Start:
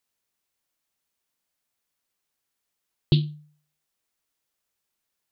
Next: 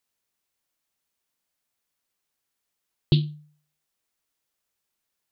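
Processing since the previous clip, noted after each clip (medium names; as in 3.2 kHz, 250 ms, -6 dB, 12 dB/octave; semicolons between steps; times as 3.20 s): no audible change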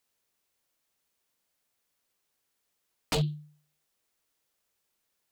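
peaking EQ 480 Hz +3 dB 0.79 oct; wavefolder -23.5 dBFS; trim +2 dB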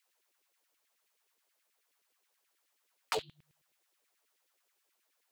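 compression 3:1, threshold -35 dBFS, peak gain reduction 8.5 dB; LFO high-pass saw down 9.4 Hz 290–2600 Hz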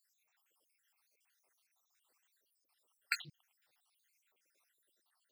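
random holes in the spectrogram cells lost 72%; loudspeaker Doppler distortion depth 0.28 ms; trim +4.5 dB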